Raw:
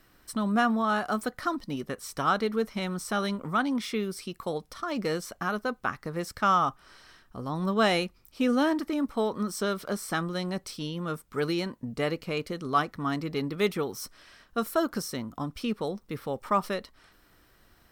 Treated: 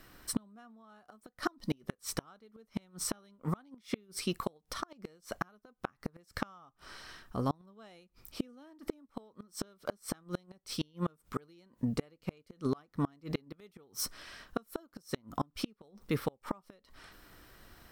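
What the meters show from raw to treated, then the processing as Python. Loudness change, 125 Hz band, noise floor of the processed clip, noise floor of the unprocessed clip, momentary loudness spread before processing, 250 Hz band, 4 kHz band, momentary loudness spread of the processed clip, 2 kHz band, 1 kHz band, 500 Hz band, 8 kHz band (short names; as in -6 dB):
-10.0 dB, -5.0 dB, -77 dBFS, -62 dBFS, 10 LU, -9.5 dB, -8.5 dB, 20 LU, -14.0 dB, -14.5 dB, -12.0 dB, -1.5 dB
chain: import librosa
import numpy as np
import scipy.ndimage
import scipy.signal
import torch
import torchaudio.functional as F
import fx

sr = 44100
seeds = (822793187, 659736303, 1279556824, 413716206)

y = fx.dynamic_eq(x, sr, hz=1800.0, q=0.73, threshold_db=-40.0, ratio=4.0, max_db=-3)
y = fx.gate_flip(y, sr, shuts_db=-23.0, range_db=-34)
y = F.gain(torch.from_numpy(y), 4.0).numpy()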